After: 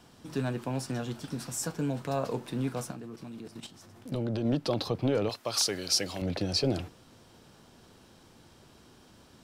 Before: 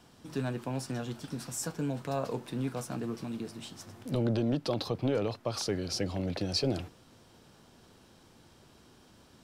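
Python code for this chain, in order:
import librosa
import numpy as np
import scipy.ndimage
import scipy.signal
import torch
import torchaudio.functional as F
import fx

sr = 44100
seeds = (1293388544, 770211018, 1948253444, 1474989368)

y = fx.level_steps(x, sr, step_db=11, at=(2.91, 4.45))
y = fx.tilt_eq(y, sr, slope=3.0, at=(5.29, 6.22))
y = F.gain(torch.from_numpy(y), 2.0).numpy()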